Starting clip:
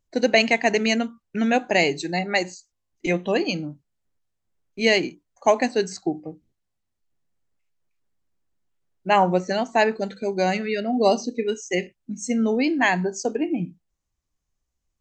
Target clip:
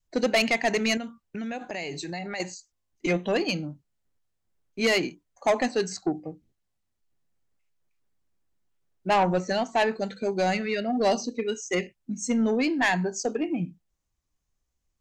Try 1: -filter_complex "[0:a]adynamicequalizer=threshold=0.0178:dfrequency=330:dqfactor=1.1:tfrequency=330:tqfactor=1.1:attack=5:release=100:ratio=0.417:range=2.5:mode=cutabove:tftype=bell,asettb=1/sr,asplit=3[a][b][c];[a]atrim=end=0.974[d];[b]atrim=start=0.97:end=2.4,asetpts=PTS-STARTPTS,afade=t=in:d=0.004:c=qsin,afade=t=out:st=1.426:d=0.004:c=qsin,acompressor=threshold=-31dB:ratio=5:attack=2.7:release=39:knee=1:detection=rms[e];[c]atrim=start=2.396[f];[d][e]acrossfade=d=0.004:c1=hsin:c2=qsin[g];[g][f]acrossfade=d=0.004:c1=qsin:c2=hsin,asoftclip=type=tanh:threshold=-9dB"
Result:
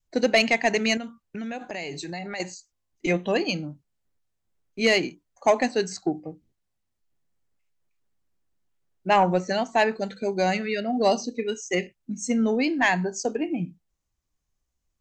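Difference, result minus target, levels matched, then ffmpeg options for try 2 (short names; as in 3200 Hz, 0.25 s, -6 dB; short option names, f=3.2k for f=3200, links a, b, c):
soft clip: distortion -8 dB
-filter_complex "[0:a]adynamicequalizer=threshold=0.0178:dfrequency=330:dqfactor=1.1:tfrequency=330:tqfactor=1.1:attack=5:release=100:ratio=0.417:range=2.5:mode=cutabove:tftype=bell,asettb=1/sr,asplit=3[a][b][c];[a]atrim=end=0.974[d];[b]atrim=start=0.97:end=2.4,asetpts=PTS-STARTPTS,afade=t=in:d=0.004:c=qsin,afade=t=out:st=1.426:d=0.004:c=qsin,acompressor=threshold=-31dB:ratio=5:attack=2.7:release=39:knee=1:detection=rms[e];[c]atrim=start=2.396[f];[d][e]acrossfade=d=0.004:c1=hsin:c2=qsin[g];[g][f]acrossfade=d=0.004:c1=qsin:c2=hsin,asoftclip=type=tanh:threshold=-16dB"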